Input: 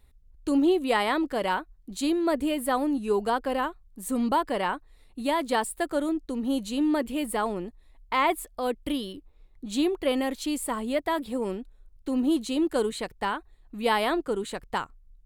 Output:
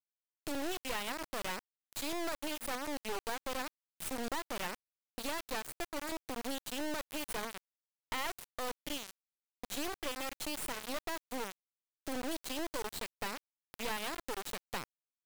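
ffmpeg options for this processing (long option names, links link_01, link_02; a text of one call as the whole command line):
ffmpeg -i in.wav -af "highpass=frequency=670:poles=1,acompressor=threshold=-44dB:ratio=3,acrusher=bits=4:dc=4:mix=0:aa=0.000001,volume=5.5dB" out.wav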